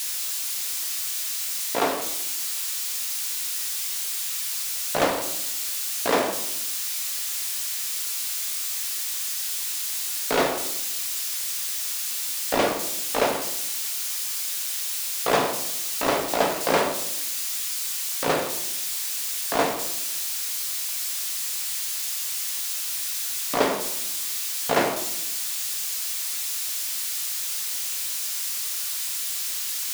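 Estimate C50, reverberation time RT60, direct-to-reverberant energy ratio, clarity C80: 8.0 dB, 0.80 s, 3.5 dB, 10.5 dB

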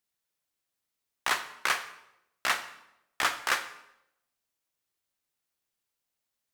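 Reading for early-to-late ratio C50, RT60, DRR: 12.0 dB, 0.85 s, 9.5 dB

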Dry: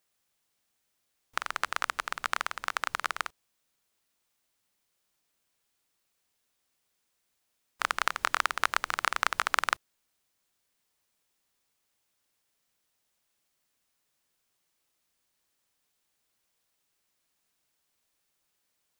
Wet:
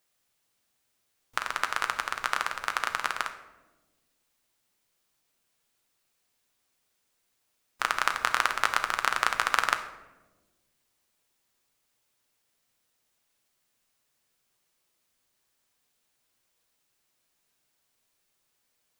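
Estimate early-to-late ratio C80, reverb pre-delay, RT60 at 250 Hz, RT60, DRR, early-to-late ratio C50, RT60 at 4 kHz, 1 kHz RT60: 12.5 dB, 8 ms, 1.9 s, 1.2 s, 6.0 dB, 10.0 dB, 0.65 s, 1.0 s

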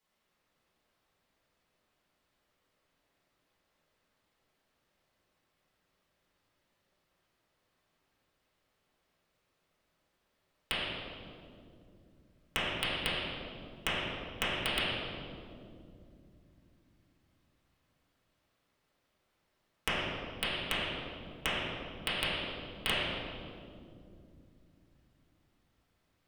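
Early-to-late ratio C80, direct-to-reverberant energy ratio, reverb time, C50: -0.5 dB, -11.5 dB, 2.6 s, -3.0 dB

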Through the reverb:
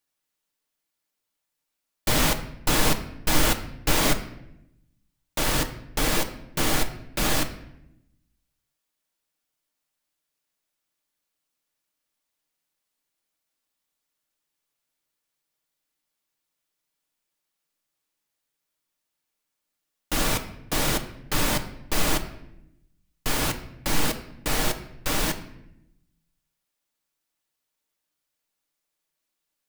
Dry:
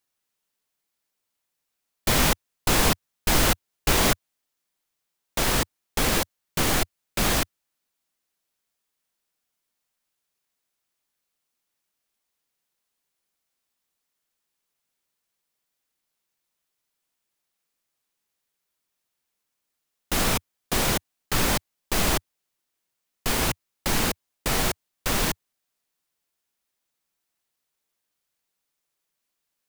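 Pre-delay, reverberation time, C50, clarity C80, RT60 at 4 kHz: 3 ms, 0.80 s, 11.5 dB, 14.5 dB, 0.60 s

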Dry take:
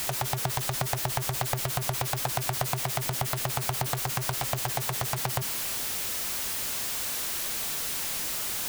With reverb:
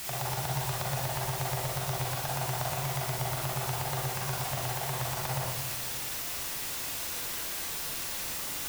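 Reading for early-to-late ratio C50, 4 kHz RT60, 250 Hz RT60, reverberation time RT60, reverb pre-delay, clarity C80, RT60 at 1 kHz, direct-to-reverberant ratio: -1.0 dB, 0.65 s, 1.3 s, 1.0 s, 34 ms, 3.0 dB, 1.0 s, -4.5 dB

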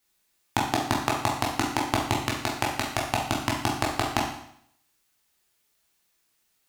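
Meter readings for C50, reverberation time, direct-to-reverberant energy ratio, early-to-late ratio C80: 4.0 dB, 0.70 s, -3.5 dB, 7.5 dB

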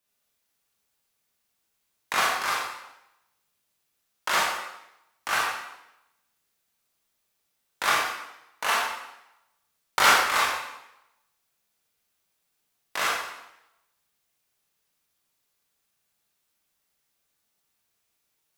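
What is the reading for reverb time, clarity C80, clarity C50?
0.85 s, 3.5 dB, 0.0 dB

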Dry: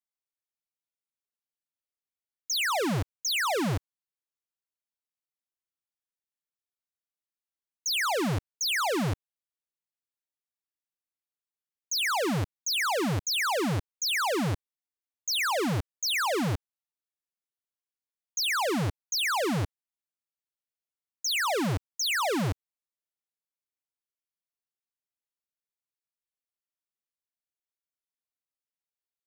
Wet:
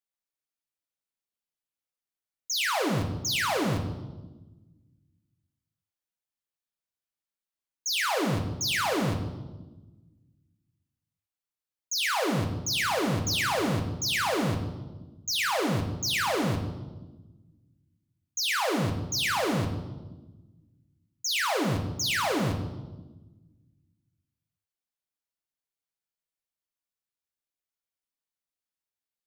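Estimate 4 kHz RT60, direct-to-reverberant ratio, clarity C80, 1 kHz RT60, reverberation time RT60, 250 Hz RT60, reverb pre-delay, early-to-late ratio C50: 1.0 s, 3.0 dB, 10.5 dB, 1.1 s, 1.2 s, 1.8 s, 6 ms, 8.5 dB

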